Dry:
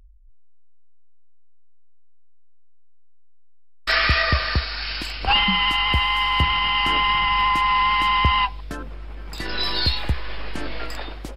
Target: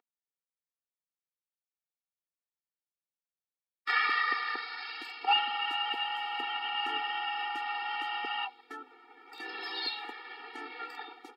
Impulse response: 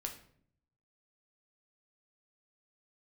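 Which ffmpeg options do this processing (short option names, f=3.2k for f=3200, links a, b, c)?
-filter_complex "[0:a]acrossover=split=490 3100:gain=0.158 1 0.224[a][b][c];[a][b][c]amix=inputs=3:normalize=0,afftfilt=real='re*eq(mod(floor(b*sr/1024/240),2),1)':imag='im*eq(mod(floor(b*sr/1024/240),2),1)':win_size=1024:overlap=0.75,volume=-3.5dB"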